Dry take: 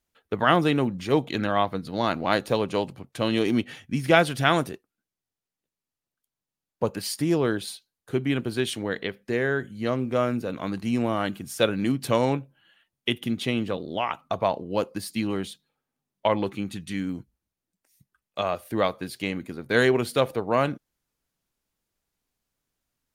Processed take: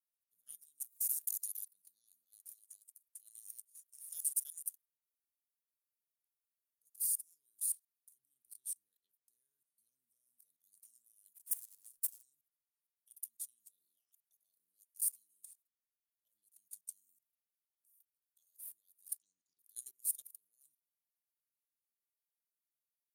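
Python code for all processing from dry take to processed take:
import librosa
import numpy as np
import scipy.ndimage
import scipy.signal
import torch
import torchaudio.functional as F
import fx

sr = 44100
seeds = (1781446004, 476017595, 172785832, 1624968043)

y = fx.chain(x, sr, fx.highpass(hz=1200.0, slope=12),
    fx.spectral_comp(ratio=4.0), at=(0.8, 1.68))
y = fx.chain(y, sr, fx.high_shelf(hz=3800.0, db=4.5),
    fx.filter_lfo_highpass(shape='square', hz=6.5, low_hz=530.0, high_hz=6600.0, q=1.1), at=(2.51, 4.69))
y = fx.chain(y, sr, fx.high_shelf(hz=2900.0, db=-8.5),
    fx.notch(hz=6900.0, q=10.0), at=(8.18, 10.64))
y = fx.chain(y, sr, fx.lower_of_two(delay_ms=2.1),
    fx.clip_hard(threshold_db=-22.0), at=(11.4, 12.23))
y = fx.chain(y, sr, fx.env_phaser(low_hz=550.0, high_hz=3100.0, full_db=-26.0),
    fx.cheby1_lowpass(hz=6000.0, order=3), at=(19.18, 19.59))
y = fx.level_steps(y, sr, step_db=19)
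y = scipy.signal.sosfilt(scipy.signal.cheby2(4, 70, 2500.0, 'highpass', fs=sr, output='sos'), y)
y = fx.leveller(y, sr, passes=1)
y = F.gain(torch.from_numpy(y), 8.5).numpy()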